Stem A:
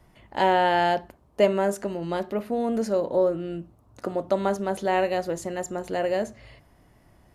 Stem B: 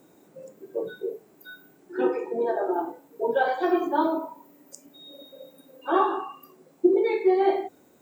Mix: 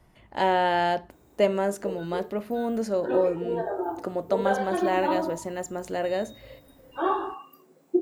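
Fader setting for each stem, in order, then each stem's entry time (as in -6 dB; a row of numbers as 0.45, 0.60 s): -2.0, -3.5 dB; 0.00, 1.10 s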